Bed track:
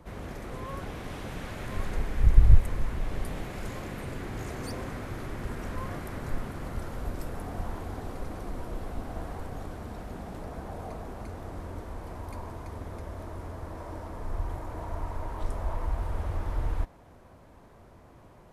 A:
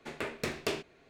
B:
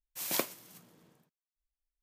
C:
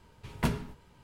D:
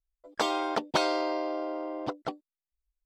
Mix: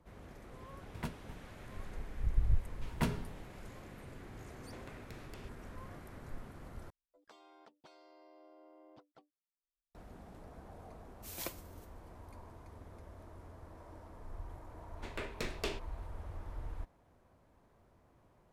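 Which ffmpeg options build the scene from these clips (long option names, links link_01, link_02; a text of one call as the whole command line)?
ffmpeg -i bed.wav -i cue0.wav -i cue1.wav -i cue2.wav -i cue3.wav -filter_complex "[3:a]asplit=2[link_01][link_02];[1:a]asplit=2[link_03][link_04];[0:a]volume=-13.5dB[link_05];[link_01]aeval=exprs='val(0)*pow(10,-38*if(lt(mod(2.9*n/s,1),2*abs(2.9)/1000),1-mod(2.9*n/s,1)/(2*abs(2.9)/1000),(mod(2.9*n/s,1)-2*abs(2.9)/1000)/(1-2*abs(2.9)/1000))/20)':channel_layout=same[link_06];[link_03]acompressor=threshold=-40dB:ratio=6:attack=3.2:release=140:knee=1:detection=peak[link_07];[4:a]acompressor=threshold=-35dB:ratio=5:attack=1.2:release=901:knee=1:detection=rms[link_08];[2:a]aecho=1:1:5.9:0.37[link_09];[link_04]equalizer=frequency=3600:width_type=o:width=0.77:gain=2.5[link_10];[link_05]asplit=2[link_11][link_12];[link_11]atrim=end=6.904[link_13];[link_08]atrim=end=3.05,asetpts=PTS-STARTPTS,volume=-18dB[link_14];[link_12]atrim=start=9.946[link_15];[link_06]atrim=end=1.03,asetpts=PTS-STARTPTS,volume=-0.5dB,afade=type=in:duration=0.004:curve=hsin,afade=type=out:start_time=1.026:duration=0.004:curve=hsin,adelay=600[link_16];[link_02]atrim=end=1.03,asetpts=PTS-STARTPTS,volume=-4.5dB,afade=type=in:duration=0.004:curve=hsin,afade=type=out:start_time=1.026:duration=0.004:curve=hsin,adelay=2580[link_17];[link_07]atrim=end=1.09,asetpts=PTS-STARTPTS,volume=-11dB,afade=type=in:duration=0.004:curve=hsin,afade=type=out:start_time=1.086:duration=0.004:curve=hsin,adelay=4670[link_18];[link_09]atrim=end=2.02,asetpts=PTS-STARTPTS,volume=-11dB,afade=type=in:duration=0.004:curve=hsin,afade=type=out:start_time=2.016:duration=0.004:curve=hsin,adelay=11070[link_19];[link_10]atrim=end=1.09,asetpts=PTS-STARTPTS,volume=-6dB,afade=type=in:duration=0.004:curve=hsin,afade=type=out:start_time=1.086:duration=0.004:curve=hsin,adelay=14970[link_20];[link_13][link_14]acrossfade=duration=0.004:curve1=hsin:curve2=hsin[link_21];[link_21][link_15]acrossfade=duration=0.004:curve1=hsin:curve2=hsin[link_22];[link_22][link_16][link_17][link_18][link_19][link_20]amix=inputs=6:normalize=0" out.wav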